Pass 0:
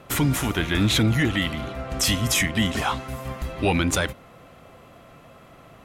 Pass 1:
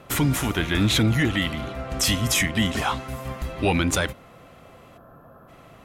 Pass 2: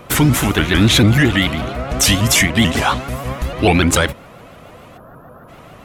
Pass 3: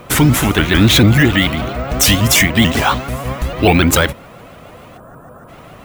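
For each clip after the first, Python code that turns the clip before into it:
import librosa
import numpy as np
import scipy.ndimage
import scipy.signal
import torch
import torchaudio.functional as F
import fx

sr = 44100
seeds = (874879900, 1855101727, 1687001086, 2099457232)

y1 = fx.spec_box(x, sr, start_s=4.97, length_s=0.52, low_hz=1800.0, high_hz=11000.0, gain_db=-20)
y2 = fx.vibrato_shape(y1, sr, shape='saw_up', rate_hz=6.8, depth_cents=160.0)
y2 = F.gain(torch.from_numpy(y2), 8.5).numpy()
y3 = np.repeat(y2[::2], 2)[:len(y2)]
y3 = F.gain(torch.from_numpy(y3), 2.0).numpy()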